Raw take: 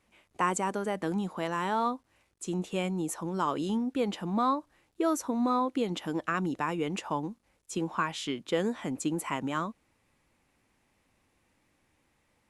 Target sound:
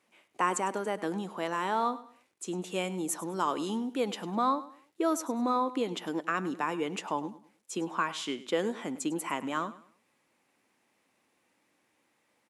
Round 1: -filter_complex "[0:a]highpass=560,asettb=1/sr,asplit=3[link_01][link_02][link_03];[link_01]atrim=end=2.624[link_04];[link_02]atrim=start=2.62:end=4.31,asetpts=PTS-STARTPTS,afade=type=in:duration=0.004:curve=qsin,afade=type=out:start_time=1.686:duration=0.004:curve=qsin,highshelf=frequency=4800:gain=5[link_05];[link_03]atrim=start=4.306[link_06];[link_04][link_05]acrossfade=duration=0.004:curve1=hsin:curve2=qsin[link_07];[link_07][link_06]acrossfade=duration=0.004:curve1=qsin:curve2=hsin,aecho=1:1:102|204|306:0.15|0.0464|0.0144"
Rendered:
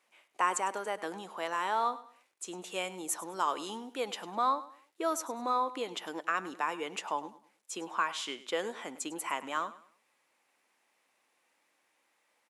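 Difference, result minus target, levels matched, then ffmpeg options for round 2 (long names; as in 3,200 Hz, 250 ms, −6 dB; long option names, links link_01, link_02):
250 Hz band −8.0 dB
-filter_complex "[0:a]highpass=240,asettb=1/sr,asplit=3[link_01][link_02][link_03];[link_01]atrim=end=2.624[link_04];[link_02]atrim=start=2.62:end=4.31,asetpts=PTS-STARTPTS,afade=type=in:duration=0.004:curve=qsin,afade=type=out:start_time=1.686:duration=0.004:curve=qsin,highshelf=frequency=4800:gain=5[link_05];[link_03]atrim=start=4.306[link_06];[link_04][link_05]acrossfade=duration=0.004:curve1=hsin:curve2=qsin[link_07];[link_07][link_06]acrossfade=duration=0.004:curve1=qsin:curve2=hsin,aecho=1:1:102|204|306:0.15|0.0464|0.0144"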